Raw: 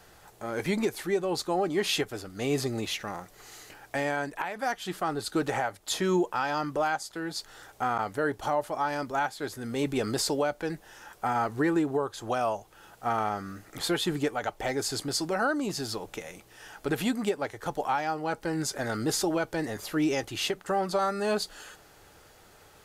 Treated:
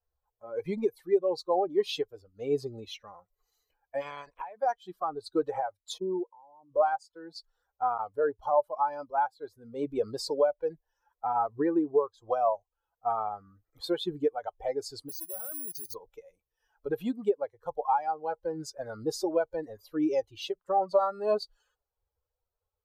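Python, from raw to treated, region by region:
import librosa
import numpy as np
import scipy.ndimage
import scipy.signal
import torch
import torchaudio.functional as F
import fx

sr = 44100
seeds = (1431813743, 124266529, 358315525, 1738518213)

y = fx.spec_clip(x, sr, under_db=23, at=(4.0, 4.4), fade=0.02)
y = fx.lowpass(y, sr, hz=3400.0, slope=6, at=(4.0, 4.4), fade=0.02)
y = fx.chain(y, sr, fx.ellip_lowpass(hz=1000.0, order=4, stop_db=40),
    fx.level_steps(step_db=14), at=(5.98, 6.72))
y = fx.chain(y, sr, fx.lowpass(hz=8100.0, slope=12),
    fx.level_steps(step_db=12),
    fx.resample_bad(factor=4, down='filtered', up='zero_stuff'), at=(15.09, 15.94))
y = fx.bin_expand(y, sr, power=2.0)
y = fx.graphic_eq_10(y, sr, hz=(125, 500, 1000, 2000, 4000, 8000), db=(-5, 11, 8, -10, 4, -7))
y = y * librosa.db_to_amplitude(-2.5)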